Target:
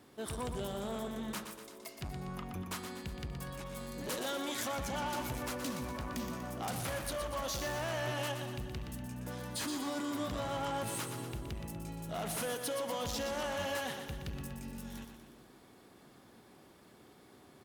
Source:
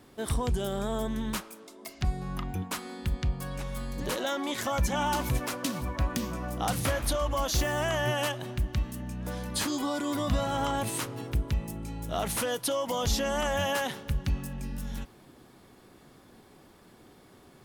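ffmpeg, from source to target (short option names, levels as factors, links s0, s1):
-filter_complex "[0:a]asoftclip=type=tanh:threshold=0.0355,highpass=f=100:p=1,asplit=2[s0][s1];[s1]aecho=0:1:121|242|363|484|605|726|847:0.422|0.228|0.123|0.0664|0.0359|0.0194|0.0105[s2];[s0][s2]amix=inputs=2:normalize=0,asettb=1/sr,asplit=3[s3][s4][s5];[s3]atrim=end=3.644[s6];[s4]atrim=start=3.64:end=4.68,asetpts=PTS-STARTPTS,afade=t=in:d=0.004:c=qsin,afade=t=out:st=1.036:d=0.004:c=qsin,adynamicequalizer=threshold=0.00355:dfrequency=4000:dqfactor=0.7:tfrequency=4000:tqfactor=0.7:attack=5:release=100:ratio=0.375:range=2.5:mode=boostabove:tftype=highshelf[s7];[s5]atrim=start=4.676[s8];[s6][s7]acrossfade=d=0.004:c1=hsin:c2=qsin[s9];[s9][s8]acrossfade=d=0.004:c1=qsin:c2=hsin,volume=0.631"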